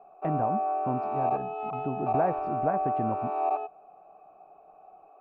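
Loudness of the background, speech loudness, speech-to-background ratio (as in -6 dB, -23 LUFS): -30.5 LUFS, -33.5 LUFS, -3.0 dB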